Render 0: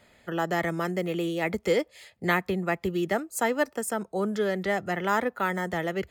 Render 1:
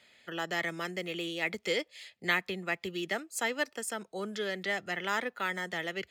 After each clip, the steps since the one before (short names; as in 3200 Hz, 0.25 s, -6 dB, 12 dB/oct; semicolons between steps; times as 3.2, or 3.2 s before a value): weighting filter D; gain -8.5 dB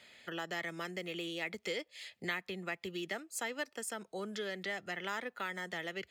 compressor 2:1, threshold -46 dBFS, peak gain reduction 13 dB; gain +3 dB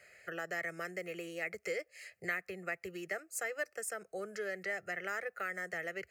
fixed phaser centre 950 Hz, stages 6; gain +2.5 dB